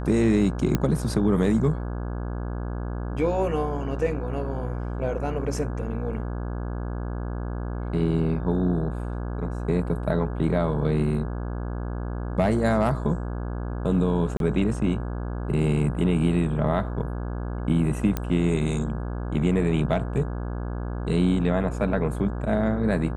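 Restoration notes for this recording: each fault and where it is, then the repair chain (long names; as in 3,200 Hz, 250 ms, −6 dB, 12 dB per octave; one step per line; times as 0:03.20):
mains buzz 60 Hz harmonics 28 −30 dBFS
0:00.75: click −9 dBFS
0:14.37–0:14.40: drop-out 32 ms
0:18.17: click −12 dBFS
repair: click removal
hum removal 60 Hz, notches 28
repair the gap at 0:14.37, 32 ms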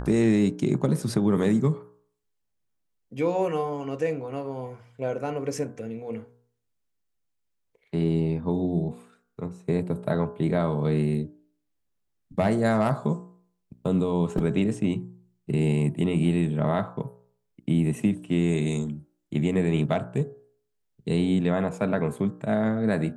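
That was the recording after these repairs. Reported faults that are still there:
0:18.17: click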